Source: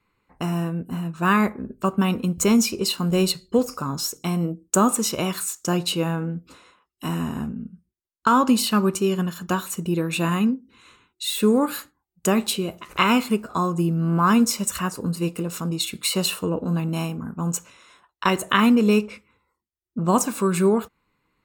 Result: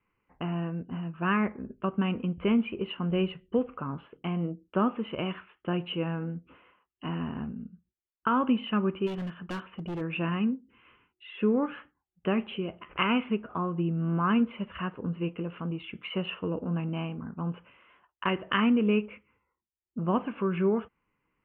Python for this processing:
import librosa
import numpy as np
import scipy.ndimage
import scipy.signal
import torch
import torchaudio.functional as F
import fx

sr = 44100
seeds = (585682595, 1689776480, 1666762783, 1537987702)

y = scipy.signal.sosfilt(scipy.signal.cheby1(8, 1.0, 3200.0, 'lowpass', fs=sr, output='sos'), x)
y = fx.dynamic_eq(y, sr, hz=860.0, q=1.1, threshold_db=-30.0, ratio=4.0, max_db=-3)
y = fx.clip_hard(y, sr, threshold_db=-25.5, at=(9.06, 10.0), fade=0.02)
y = F.gain(torch.from_numpy(y), -6.0).numpy()